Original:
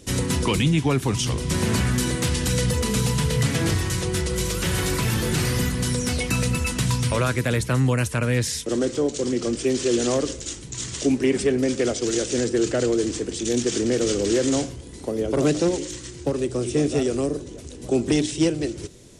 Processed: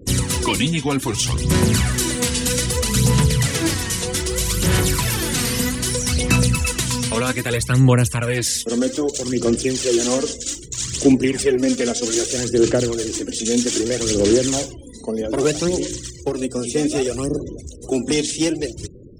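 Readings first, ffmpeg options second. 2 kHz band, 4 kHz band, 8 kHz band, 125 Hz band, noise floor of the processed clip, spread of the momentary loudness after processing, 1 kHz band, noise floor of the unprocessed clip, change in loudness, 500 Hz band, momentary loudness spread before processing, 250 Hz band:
+3.5 dB, +5.5 dB, +7.0 dB, +3.0 dB, -37 dBFS, 9 LU, +3.0 dB, -39 dBFS, +3.5 dB, +2.5 dB, 7 LU, +3.0 dB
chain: -af "afftfilt=real='re*gte(hypot(re,im),0.00708)':imag='im*gte(hypot(re,im),0.00708)':win_size=1024:overlap=0.75,aphaser=in_gain=1:out_gain=1:delay=4.4:decay=0.57:speed=0.63:type=sinusoidal,highshelf=f=3400:g=6.5"

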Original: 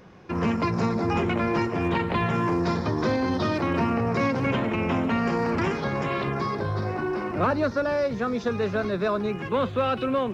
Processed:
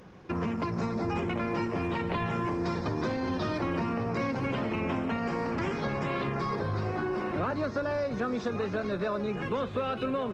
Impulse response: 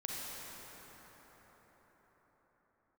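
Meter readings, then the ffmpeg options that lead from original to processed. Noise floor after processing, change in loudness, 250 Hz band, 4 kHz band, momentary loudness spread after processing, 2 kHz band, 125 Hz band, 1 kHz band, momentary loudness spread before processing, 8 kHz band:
-37 dBFS, -5.5 dB, -5.5 dB, -5.5 dB, 1 LU, -5.5 dB, -5.5 dB, -6.0 dB, 3 LU, no reading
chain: -filter_complex "[0:a]acompressor=threshold=0.0447:ratio=6,aecho=1:1:1155:0.251,asplit=2[s0][s1];[1:a]atrim=start_sample=2205[s2];[s1][s2]afir=irnorm=-1:irlink=0,volume=0.0794[s3];[s0][s3]amix=inputs=2:normalize=0,volume=0.891" -ar 48000 -c:a libopus -b:a 20k

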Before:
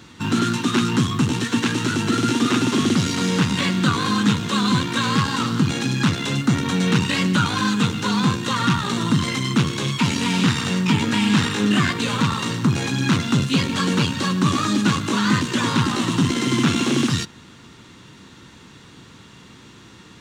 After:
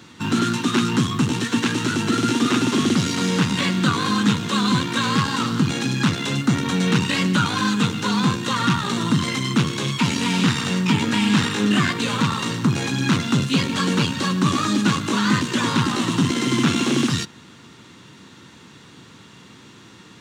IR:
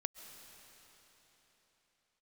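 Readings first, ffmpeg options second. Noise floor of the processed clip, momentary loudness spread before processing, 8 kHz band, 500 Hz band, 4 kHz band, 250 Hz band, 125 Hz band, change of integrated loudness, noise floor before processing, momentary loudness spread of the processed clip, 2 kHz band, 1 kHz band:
-46 dBFS, 2 LU, 0.0 dB, 0.0 dB, 0.0 dB, 0.0 dB, -1.0 dB, -0.5 dB, -46 dBFS, 3 LU, 0.0 dB, 0.0 dB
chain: -af "highpass=100"

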